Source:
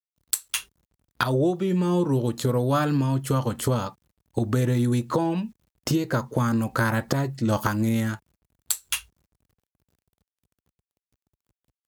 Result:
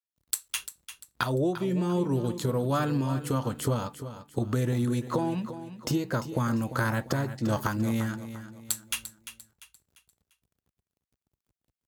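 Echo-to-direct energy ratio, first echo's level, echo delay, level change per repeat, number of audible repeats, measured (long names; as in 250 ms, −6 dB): −11.5 dB, −12.0 dB, 346 ms, −8.5 dB, 3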